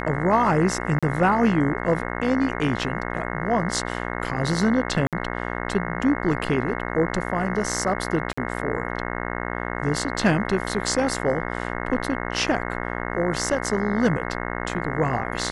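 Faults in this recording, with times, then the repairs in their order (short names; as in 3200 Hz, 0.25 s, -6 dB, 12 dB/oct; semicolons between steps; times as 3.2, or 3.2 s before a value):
buzz 60 Hz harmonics 36 -29 dBFS
0.99–1.03 gap 36 ms
5.07–5.13 gap 57 ms
8.33–8.38 gap 45 ms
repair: de-hum 60 Hz, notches 36; interpolate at 0.99, 36 ms; interpolate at 5.07, 57 ms; interpolate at 8.33, 45 ms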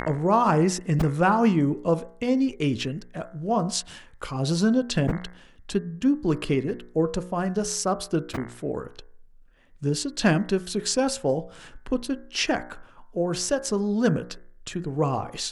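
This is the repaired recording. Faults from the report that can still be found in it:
none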